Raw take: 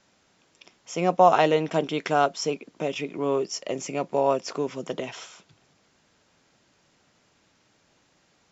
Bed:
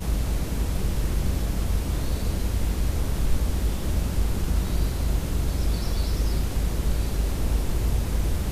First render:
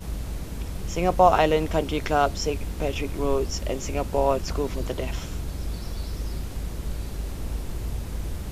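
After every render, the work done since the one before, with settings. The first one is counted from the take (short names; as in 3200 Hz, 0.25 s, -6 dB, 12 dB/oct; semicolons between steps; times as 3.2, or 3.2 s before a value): add bed -6.5 dB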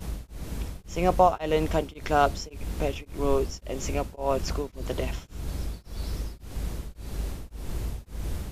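beating tremolo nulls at 1.8 Hz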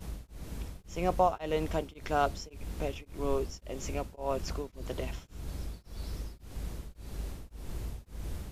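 gain -6.5 dB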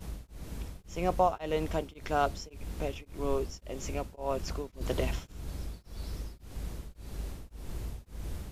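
4.81–5.32 gain +5.5 dB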